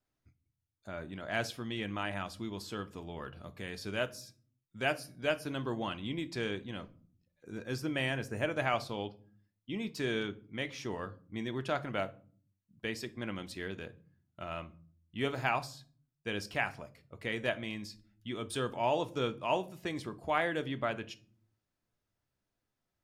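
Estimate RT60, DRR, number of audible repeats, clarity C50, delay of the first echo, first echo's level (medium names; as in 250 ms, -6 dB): 0.45 s, 10.0 dB, no echo, 19.5 dB, no echo, no echo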